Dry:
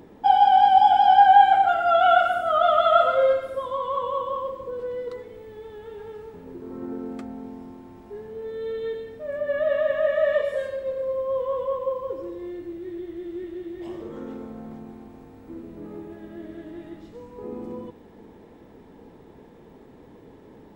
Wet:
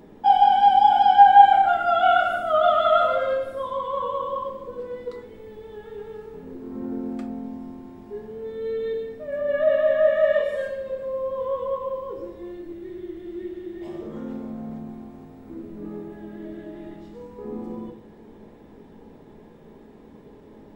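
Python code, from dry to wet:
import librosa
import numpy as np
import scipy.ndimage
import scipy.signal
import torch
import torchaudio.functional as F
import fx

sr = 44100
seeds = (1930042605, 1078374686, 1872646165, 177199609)

y = fx.room_shoebox(x, sr, seeds[0], volume_m3=270.0, walls='furnished', distance_m=1.3)
y = y * 10.0 ** (-2.0 / 20.0)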